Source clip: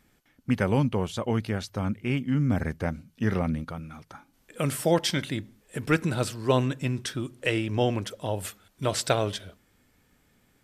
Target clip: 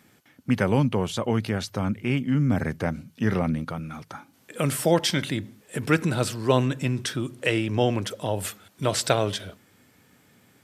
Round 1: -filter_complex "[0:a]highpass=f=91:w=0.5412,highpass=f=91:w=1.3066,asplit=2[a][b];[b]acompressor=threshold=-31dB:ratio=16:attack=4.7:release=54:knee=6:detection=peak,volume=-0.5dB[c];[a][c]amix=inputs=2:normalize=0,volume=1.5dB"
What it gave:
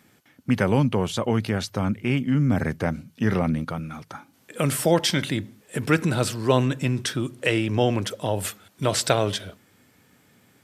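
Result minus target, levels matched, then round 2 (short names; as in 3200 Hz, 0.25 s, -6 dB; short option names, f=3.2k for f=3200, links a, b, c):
compressor: peak gain reduction -8.5 dB
-filter_complex "[0:a]highpass=f=91:w=0.5412,highpass=f=91:w=1.3066,asplit=2[a][b];[b]acompressor=threshold=-40dB:ratio=16:attack=4.7:release=54:knee=6:detection=peak,volume=-0.5dB[c];[a][c]amix=inputs=2:normalize=0,volume=1.5dB"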